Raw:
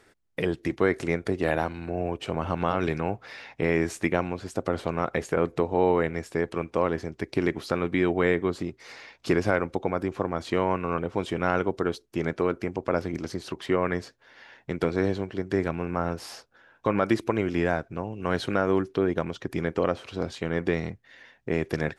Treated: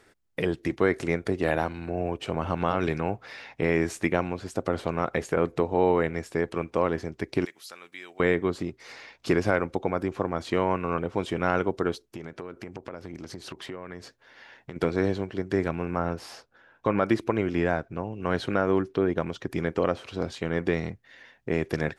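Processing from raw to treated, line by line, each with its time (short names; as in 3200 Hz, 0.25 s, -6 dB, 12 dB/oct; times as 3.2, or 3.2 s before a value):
7.45–8.2 differentiator
12.05–14.76 compressor 5:1, threshold -35 dBFS
15.99–19.22 high shelf 5100 Hz -6 dB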